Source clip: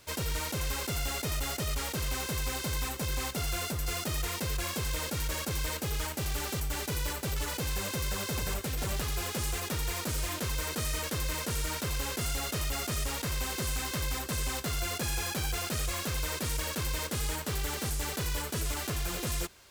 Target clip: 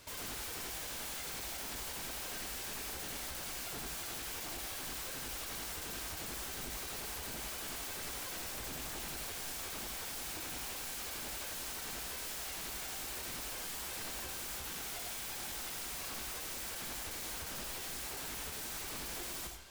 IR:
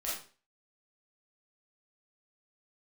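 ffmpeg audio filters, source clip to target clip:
-filter_complex "[0:a]bandreject=frequency=60:width_type=h:width=6,bandreject=frequency=120:width_type=h:width=6,aeval=exprs='0.0112*(abs(mod(val(0)/0.0112+3,4)-2)-1)':channel_layout=same,asplit=2[link_01][link_02];[1:a]atrim=start_sample=2205,asetrate=52920,aresample=44100,adelay=49[link_03];[link_02][link_03]afir=irnorm=-1:irlink=0,volume=-5dB[link_04];[link_01][link_04]amix=inputs=2:normalize=0"

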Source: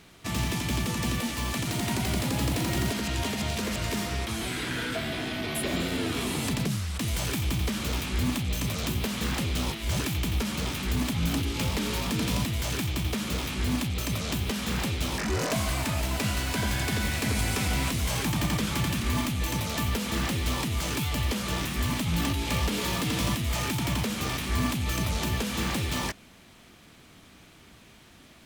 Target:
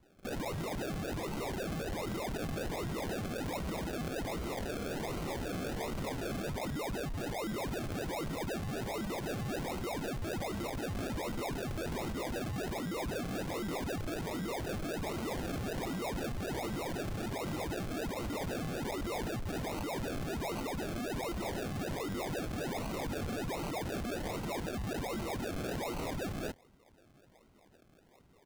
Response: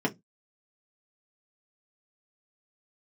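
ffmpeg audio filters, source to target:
-filter_complex "[0:a]asplit=2[link_01][link_02];[link_02]adynamicsmooth=sensitivity=7:basefreq=2100,volume=3dB[link_03];[link_01][link_03]amix=inputs=2:normalize=0,lowpass=frequency=3200:width_type=q:width=0.5098,lowpass=frequency=3200:width_type=q:width=0.6013,lowpass=frequency=3200:width_type=q:width=0.9,lowpass=frequency=3200:width_type=q:width=2.563,afreqshift=-3800,asoftclip=type=tanh:threshold=-22.5dB,aecho=1:1:45|393:0.15|0.422,asoftclip=type=hard:threshold=-35dB,afwtdn=0.01,highpass=1400,acrusher=samples=36:mix=1:aa=0.000001:lfo=1:lforange=21.6:lforate=1.3"

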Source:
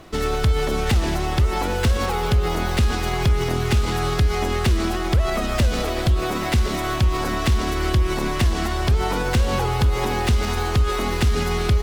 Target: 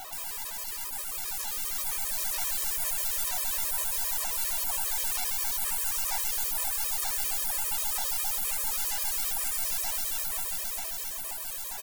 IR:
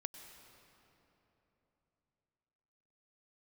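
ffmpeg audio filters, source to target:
-filter_complex "[0:a]acrossover=split=6600[link_01][link_02];[link_02]acompressor=threshold=-49dB:ratio=4:attack=1:release=60[link_03];[link_01][link_03]amix=inputs=2:normalize=0,aemphasis=mode=production:type=riaa,afftfilt=real='re*lt(hypot(re,im),0.0251)':imag='im*lt(hypot(re,im),0.0251)':win_size=1024:overlap=0.75,highshelf=frequency=5600:gain=5.5,dynaudnorm=framelen=210:gausssize=17:maxgain=8dB,asoftclip=type=tanh:threshold=-20dB,highpass=frequency=770:width_type=q:width=4.9,aeval=exprs='0.126*(cos(1*acos(clip(val(0)/0.126,-1,1)))-cos(1*PI/2))+0.000794*(cos(4*acos(clip(val(0)/0.126,-1,1)))-cos(4*PI/2))+0.000794*(cos(5*acos(clip(val(0)/0.126,-1,1)))-cos(5*PI/2))+0.0178*(cos(6*acos(clip(val(0)/0.126,-1,1)))-cos(6*PI/2))+0.000794*(cos(8*acos(clip(val(0)/0.126,-1,1)))-cos(8*PI/2))':channel_layout=same,asplit=2[link_04][link_05];[link_05]adelay=231,lowpass=frequency=1500:poles=1,volume=-14dB,asplit=2[link_06][link_07];[link_07]adelay=231,lowpass=frequency=1500:poles=1,volume=0.16[link_08];[link_04][link_06][link_08]amix=inputs=3:normalize=0,afftfilt=real='re*gt(sin(2*PI*7.5*pts/sr)*(1-2*mod(floor(b*sr/1024/330),2)),0)':imag='im*gt(sin(2*PI*7.5*pts/sr)*(1-2*mod(floor(b*sr/1024/330),2)),0)':win_size=1024:overlap=0.75"

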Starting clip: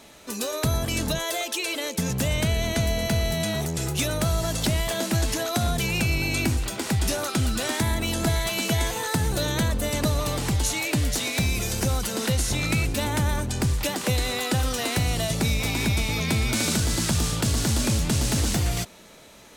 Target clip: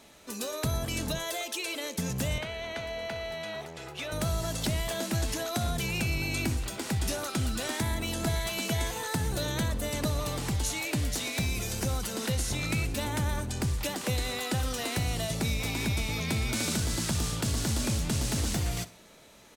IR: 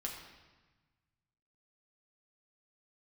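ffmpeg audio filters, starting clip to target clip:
-filter_complex "[0:a]asettb=1/sr,asplit=3[link_01][link_02][link_03];[link_01]atrim=end=2.384[link_04];[link_02]atrim=start=2.38:end=4.12,asetpts=PTS-STARTPTS,afade=type=in:duration=0.004:curve=qsin,afade=type=out:start_time=1.736:duration=0.004:curve=qsin,acrossover=split=420 3900:gain=0.178 1 0.141[link_05][link_06][link_07];[link_05][link_06][link_07]amix=inputs=3:normalize=0[link_08];[link_03]atrim=start=4.116[link_09];[link_04][link_08]acrossfade=duration=0.004:curve1=hsin:curve2=qsin[link_10];[link_10][link_09]acrossfade=duration=0.004:curve1=qsin:curve2=hsin,asplit=2[link_11][link_12];[link_12]aecho=0:1:62|124|186:0.119|0.044|0.0163[link_13];[link_11][link_13]amix=inputs=2:normalize=0,volume=-6dB"

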